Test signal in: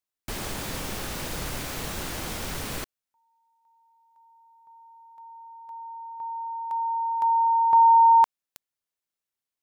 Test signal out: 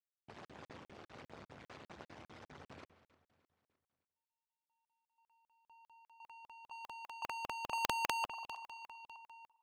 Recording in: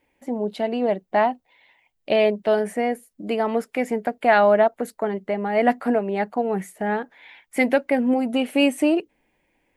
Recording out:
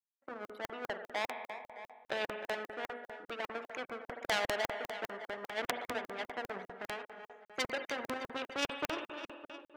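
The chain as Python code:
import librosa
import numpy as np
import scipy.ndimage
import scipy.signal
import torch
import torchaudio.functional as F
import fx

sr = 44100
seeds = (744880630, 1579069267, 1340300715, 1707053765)

p1 = fx.envelope_sharpen(x, sr, power=2.0)
p2 = fx.air_absorb(p1, sr, metres=130.0)
p3 = fx.power_curve(p2, sr, exponent=2.0)
p4 = scipy.signal.sosfilt(scipy.signal.butter(4, 90.0, 'highpass', fs=sr, output='sos'), p3)
p5 = fx.peak_eq(p4, sr, hz=140.0, db=-10.5, octaves=2.6)
p6 = fx.hum_notches(p5, sr, base_hz=60, count=9)
p7 = p6 + fx.echo_feedback(p6, sr, ms=306, feedback_pct=49, wet_db=-19.0, dry=0)
p8 = fx.rev_spring(p7, sr, rt60_s=1.3, pass_ms=(47,), chirp_ms=45, drr_db=13.0)
p9 = fx.buffer_crackle(p8, sr, first_s=0.45, period_s=0.2, block=2048, kind='zero')
p10 = fx.spectral_comp(p9, sr, ratio=2.0)
y = F.gain(torch.from_numpy(p10), -1.5).numpy()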